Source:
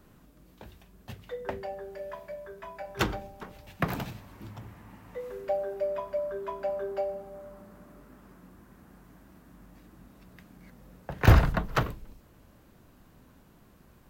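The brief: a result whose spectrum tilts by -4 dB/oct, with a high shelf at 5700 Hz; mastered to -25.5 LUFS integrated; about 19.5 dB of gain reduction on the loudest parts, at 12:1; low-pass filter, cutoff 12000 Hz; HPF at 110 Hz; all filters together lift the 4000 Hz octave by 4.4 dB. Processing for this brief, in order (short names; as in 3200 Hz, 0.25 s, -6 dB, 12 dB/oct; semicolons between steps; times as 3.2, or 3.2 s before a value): HPF 110 Hz; LPF 12000 Hz; bell 4000 Hz +8 dB; high shelf 5700 Hz -6.5 dB; compressor 12:1, threshold -35 dBFS; gain +17 dB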